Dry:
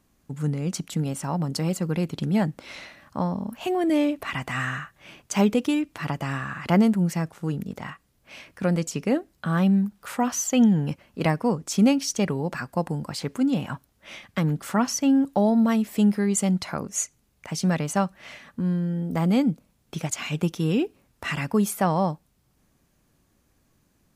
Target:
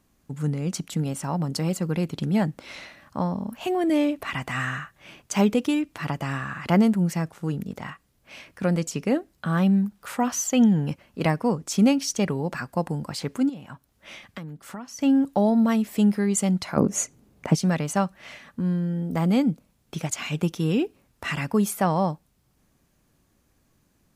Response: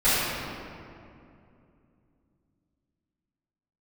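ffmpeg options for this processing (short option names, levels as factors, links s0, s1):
-filter_complex "[0:a]asettb=1/sr,asplit=3[s0][s1][s2];[s0]atrim=end=13.494[s3];[s1]atrim=start=13.49:end=14.99,asetpts=PTS-STARTPTS,afade=t=in:d=0.004:c=qsin,afade=t=out:st=1.496:d=0.004:c=qsin,acompressor=threshold=0.0126:ratio=4[s4];[s2]atrim=start=14.986[s5];[s3][s4]acrossfade=d=0.004:c1=hsin:c2=qsin[s6];[s6][s5]acrossfade=d=0.004:c1=qsin:c2=hsin,asplit=3[s7][s8][s9];[s7]afade=t=out:st=16.76:d=0.02[s10];[s8]equalizer=f=280:w=0.3:g=14.5,afade=t=in:st=16.76:d=0.02,afade=t=out:st=17.54:d=0.02[s11];[s9]afade=t=in:st=17.54:d=0.02[s12];[s10][s11][s12]amix=inputs=3:normalize=0"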